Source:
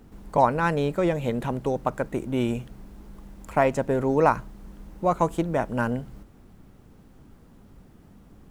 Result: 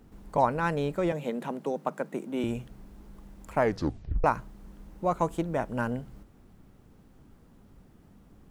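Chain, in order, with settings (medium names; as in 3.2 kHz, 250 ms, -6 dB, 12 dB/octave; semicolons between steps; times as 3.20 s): 1.12–2.44 s: Chebyshev high-pass 150 Hz, order 6; 3.57 s: tape stop 0.67 s; trim -4.5 dB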